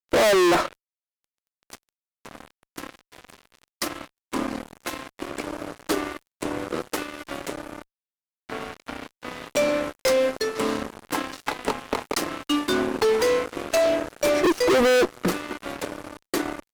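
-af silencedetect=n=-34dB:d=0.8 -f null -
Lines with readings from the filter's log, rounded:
silence_start: 0.73
silence_end: 1.70 | silence_duration: 0.97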